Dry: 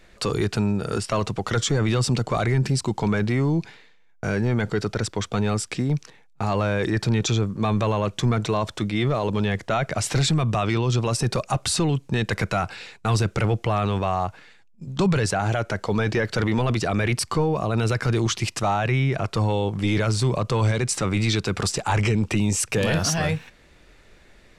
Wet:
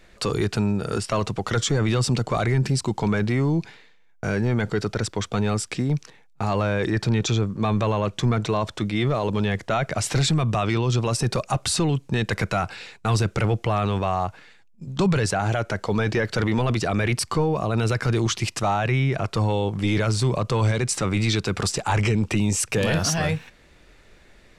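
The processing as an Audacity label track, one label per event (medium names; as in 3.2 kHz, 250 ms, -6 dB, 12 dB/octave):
6.620000	8.850000	treble shelf 8.9 kHz -5.5 dB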